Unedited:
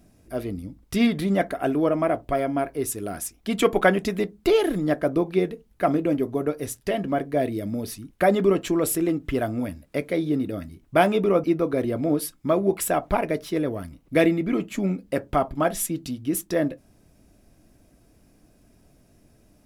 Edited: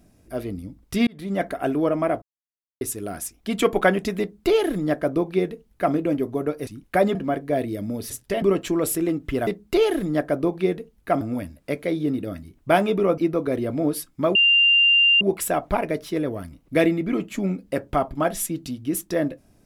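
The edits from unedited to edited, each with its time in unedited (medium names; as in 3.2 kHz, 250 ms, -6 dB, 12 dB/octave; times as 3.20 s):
1.07–1.48 s: fade in
2.22–2.81 s: mute
4.20–5.94 s: copy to 9.47 s
6.67–6.99 s: swap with 7.94–8.42 s
12.61 s: add tone 2.79 kHz -13 dBFS 0.86 s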